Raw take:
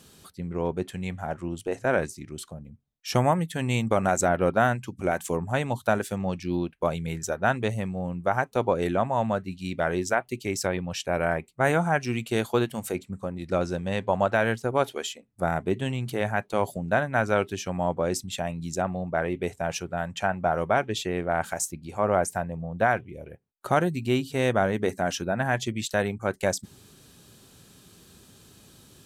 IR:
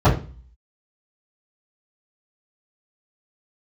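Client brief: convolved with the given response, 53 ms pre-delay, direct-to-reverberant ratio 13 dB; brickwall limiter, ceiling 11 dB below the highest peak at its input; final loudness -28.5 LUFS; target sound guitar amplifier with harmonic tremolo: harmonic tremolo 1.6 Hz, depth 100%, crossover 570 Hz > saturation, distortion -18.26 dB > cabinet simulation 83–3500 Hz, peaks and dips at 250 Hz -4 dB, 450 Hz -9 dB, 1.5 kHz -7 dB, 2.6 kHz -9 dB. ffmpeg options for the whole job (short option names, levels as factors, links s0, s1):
-filter_complex "[0:a]alimiter=limit=0.1:level=0:latency=1,asplit=2[s0][s1];[1:a]atrim=start_sample=2205,adelay=53[s2];[s1][s2]afir=irnorm=-1:irlink=0,volume=0.0178[s3];[s0][s3]amix=inputs=2:normalize=0,acrossover=split=570[s4][s5];[s4]aeval=exprs='val(0)*(1-1/2+1/2*cos(2*PI*1.6*n/s))':c=same[s6];[s5]aeval=exprs='val(0)*(1-1/2-1/2*cos(2*PI*1.6*n/s))':c=same[s7];[s6][s7]amix=inputs=2:normalize=0,asoftclip=threshold=0.0668,highpass=83,equalizer=f=250:t=q:w=4:g=-4,equalizer=f=450:t=q:w=4:g=-9,equalizer=f=1500:t=q:w=4:g=-7,equalizer=f=2600:t=q:w=4:g=-9,lowpass=f=3500:w=0.5412,lowpass=f=3500:w=1.3066,volume=3.16"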